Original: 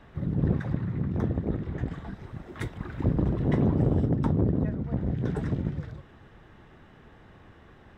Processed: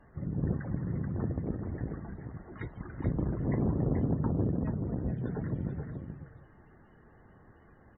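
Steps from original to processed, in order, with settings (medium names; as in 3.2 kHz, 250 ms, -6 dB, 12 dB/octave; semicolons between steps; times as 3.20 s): loudest bins only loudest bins 64; delay 432 ms -6.5 dB; trim -6 dB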